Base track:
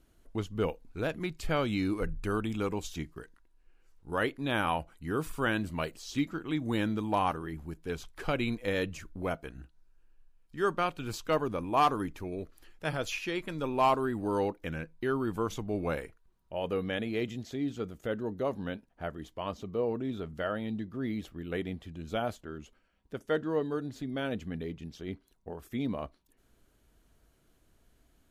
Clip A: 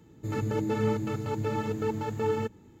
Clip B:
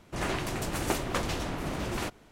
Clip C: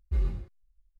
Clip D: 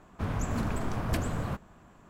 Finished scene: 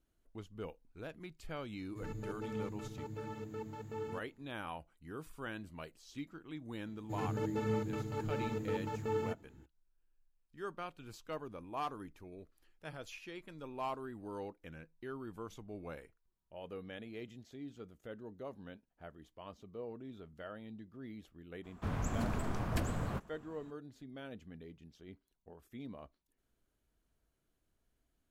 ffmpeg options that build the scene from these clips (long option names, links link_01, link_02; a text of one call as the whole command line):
ffmpeg -i bed.wav -i cue0.wav -i cue1.wav -i cue2.wav -i cue3.wav -filter_complex "[1:a]asplit=2[link_01][link_02];[0:a]volume=-14dB[link_03];[link_01]atrim=end=2.8,asetpts=PTS-STARTPTS,volume=-14dB,afade=type=in:duration=0.004:curve=hsin,afade=type=out:start_time=2.796:duration=0.004:curve=hsin,adelay=1720[link_04];[link_02]atrim=end=2.8,asetpts=PTS-STARTPTS,volume=-7.5dB,afade=type=in:duration=0.004:curve=hsin,afade=type=out:start_time=2.796:duration=0.004:curve=hsin,adelay=6860[link_05];[4:a]atrim=end=2.09,asetpts=PTS-STARTPTS,volume=-5dB,afade=type=in:duration=0.02,afade=type=out:start_time=2.07:duration=0.02,adelay=21630[link_06];[link_03][link_04][link_05][link_06]amix=inputs=4:normalize=0" out.wav